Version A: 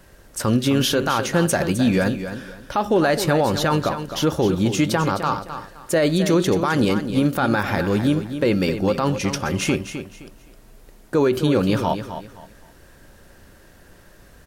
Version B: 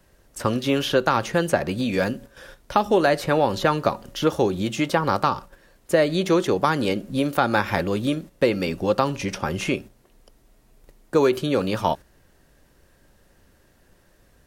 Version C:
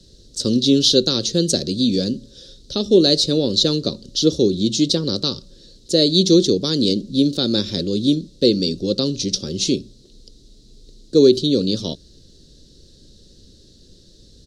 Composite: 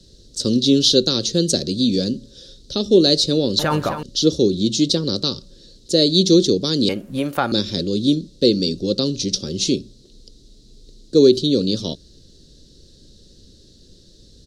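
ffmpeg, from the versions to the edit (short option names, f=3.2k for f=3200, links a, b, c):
-filter_complex "[2:a]asplit=3[a][b][c];[a]atrim=end=3.592[d];[0:a]atrim=start=3.588:end=4.032[e];[b]atrim=start=4.028:end=6.892[f];[1:a]atrim=start=6.888:end=7.522[g];[c]atrim=start=7.518[h];[d][e]acrossfade=d=0.004:c1=hsin:c2=hsin[i];[i][f]acrossfade=d=0.004:c1=hsin:c2=hsin[j];[j][g]acrossfade=d=0.004:c1=hsin:c2=hsin[k];[k][h]acrossfade=d=0.004:c1=hsin:c2=hsin"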